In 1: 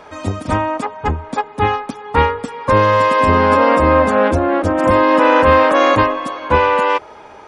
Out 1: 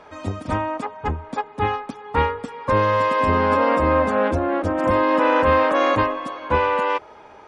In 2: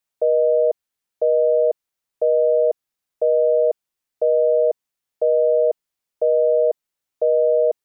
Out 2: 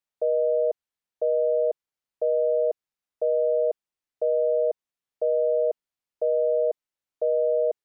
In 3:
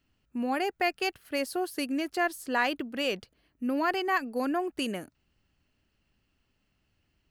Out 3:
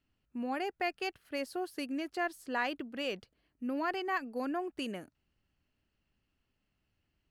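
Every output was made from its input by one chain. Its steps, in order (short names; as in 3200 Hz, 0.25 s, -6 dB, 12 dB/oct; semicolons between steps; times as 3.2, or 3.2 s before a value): high shelf 7400 Hz -8 dB; gain -6 dB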